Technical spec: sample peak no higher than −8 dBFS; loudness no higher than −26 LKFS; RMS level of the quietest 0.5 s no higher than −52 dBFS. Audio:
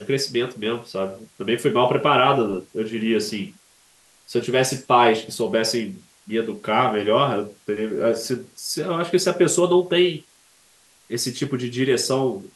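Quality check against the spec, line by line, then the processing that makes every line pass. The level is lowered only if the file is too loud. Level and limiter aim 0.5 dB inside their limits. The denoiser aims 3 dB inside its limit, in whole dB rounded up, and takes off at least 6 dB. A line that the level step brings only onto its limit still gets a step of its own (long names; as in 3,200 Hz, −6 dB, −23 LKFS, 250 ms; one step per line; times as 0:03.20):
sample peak −4.0 dBFS: out of spec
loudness −21.5 LKFS: out of spec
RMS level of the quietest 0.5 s −56 dBFS: in spec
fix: level −5 dB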